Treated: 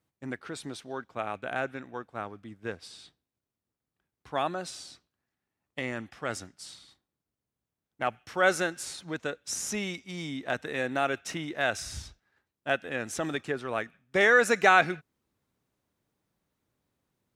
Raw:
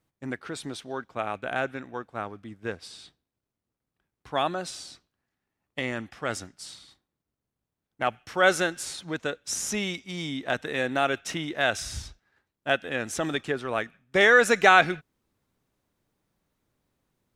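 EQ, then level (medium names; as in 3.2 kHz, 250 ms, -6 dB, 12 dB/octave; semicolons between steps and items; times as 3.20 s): high-pass 47 Hz; dynamic bell 3.3 kHz, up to -5 dB, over -46 dBFS, Q 4.3; -3.0 dB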